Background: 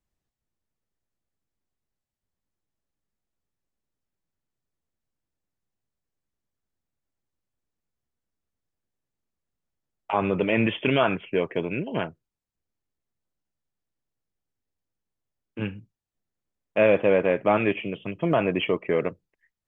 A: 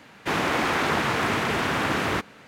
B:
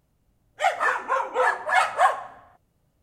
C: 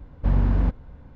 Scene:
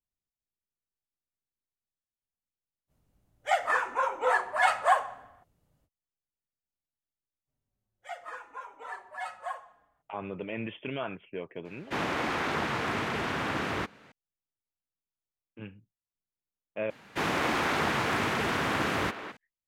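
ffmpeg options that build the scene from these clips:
-filter_complex "[2:a]asplit=2[a][b];[1:a]asplit=2[c][d];[0:a]volume=-13.5dB[e];[b]asplit=2[f][g];[g]adelay=4.6,afreqshift=-0.73[h];[f][h]amix=inputs=2:normalize=1[i];[c]highshelf=f=7.9k:g=-8[j];[d]asplit=2[k][l];[l]adelay=210,highpass=300,lowpass=3.4k,asoftclip=type=hard:threshold=-21.5dB,volume=-9dB[m];[k][m]amix=inputs=2:normalize=0[n];[e]asplit=2[o][p];[o]atrim=end=16.904[q];[n]atrim=end=2.47,asetpts=PTS-STARTPTS,volume=-4.5dB[r];[p]atrim=start=19.366[s];[a]atrim=end=3.02,asetpts=PTS-STARTPTS,volume=-4dB,afade=t=in:d=0.05,afade=t=out:st=2.97:d=0.05,adelay=2870[t];[i]atrim=end=3.02,asetpts=PTS-STARTPTS,volume=-15.5dB,afade=t=in:d=0.05,afade=t=out:st=2.97:d=0.05,adelay=7450[u];[j]atrim=end=2.47,asetpts=PTS-STARTPTS,volume=-6.5dB,afade=t=in:d=0.004:c=hsin,afade=t=out:st=2.466:d=0.004:c=hsin,adelay=11650[v];[q][r]acrossfade=d=0.004:c1=hsin:c2=hsin[w];[w][s]acrossfade=d=0.004:c1=hsin:c2=hsin[x];[x][t][u][v]amix=inputs=4:normalize=0"

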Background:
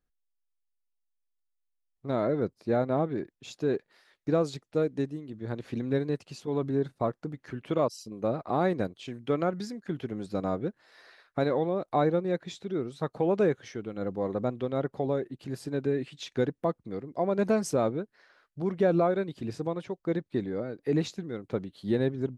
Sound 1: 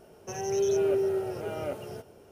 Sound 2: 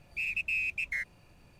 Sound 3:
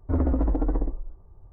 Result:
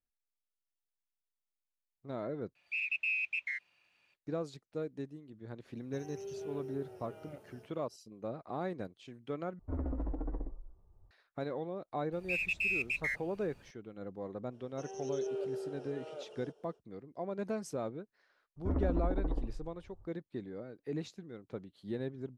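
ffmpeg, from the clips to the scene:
-filter_complex "[2:a]asplit=2[a][b];[1:a]asplit=2[c][d];[3:a]asplit=2[e][f];[0:a]volume=-11.5dB[g];[a]bandpass=f=2.7k:t=q:w=1.4:csg=0[h];[d]highpass=400,equalizer=f=450:t=q:w=4:g=9,equalizer=f=2.1k:t=q:w=4:g=-9,equalizer=f=3.3k:t=q:w=4:g=6,lowpass=f=8.2k:w=0.5412,lowpass=f=8.2k:w=1.3066[i];[g]asplit=3[j][k][l];[j]atrim=end=2.554[m];[h]atrim=end=1.59,asetpts=PTS-STARTPTS,volume=-2dB[n];[k]atrim=start=4.136:end=9.594[o];[e]atrim=end=1.52,asetpts=PTS-STARTPTS,volume=-13.5dB[p];[l]atrim=start=11.106[q];[c]atrim=end=2.31,asetpts=PTS-STARTPTS,volume=-17.5dB,afade=t=in:d=0.004:c=hsin,afade=t=out:st=2.306:d=0.004:c=hsin,adelay=249165S[r];[b]atrim=end=1.59,asetpts=PTS-STARTPTS,volume=-1.5dB,afade=t=in:d=0.004:c=hsin,afade=t=out:st=1.586:d=0.004:c=hsin,adelay=12120[s];[i]atrim=end=2.31,asetpts=PTS-STARTPTS,volume=-13dB,afade=t=in:d=0.05,afade=t=out:st=2.26:d=0.05,adelay=14500[t];[f]atrim=end=1.52,asetpts=PTS-STARTPTS,volume=-9.5dB,afade=t=in:d=0.004:c=hsin,afade=t=out:st=1.516:d=0.004:c=hsin,adelay=18560[u];[m][n]acrossfade=d=0.004:c1=hsin:c2=hsin[v];[v][o]acrossfade=d=0.004:c1=hsin:c2=hsin[w];[w][p]acrossfade=d=0.004:c1=hsin:c2=hsin[x];[x][q]acrossfade=d=0.004:c1=hsin:c2=hsin[y];[y][r][s][t][u]amix=inputs=5:normalize=0"

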